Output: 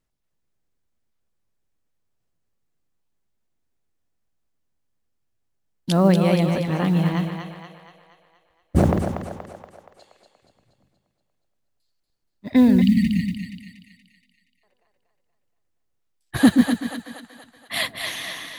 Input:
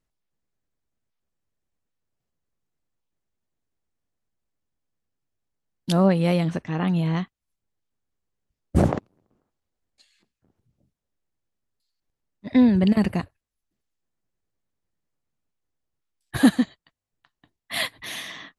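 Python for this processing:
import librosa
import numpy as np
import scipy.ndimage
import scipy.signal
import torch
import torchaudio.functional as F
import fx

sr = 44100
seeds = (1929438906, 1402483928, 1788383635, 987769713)

y = fx.echo_split(x, sr, split_hz=480.0, low_ms=126, high_ms=237, feedback_pct=52, wet_db=-5.5)
y = fx.mod_noise(y, sr, seeds[0], snr_db=35)
y = fx.spec_erase(y, sr, start_s=12.81, length_s=1.83, low_hz=320.0, high_hz=1800.0)
y = F.gain(torch.from_numpy(y), 1.5).numpy()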